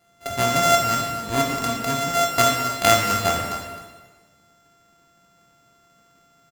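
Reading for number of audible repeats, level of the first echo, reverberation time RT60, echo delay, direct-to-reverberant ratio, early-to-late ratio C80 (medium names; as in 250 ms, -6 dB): 1, -12.0 dB, 1.4 s, 262 ms, -1.0 dB, 3.5 dB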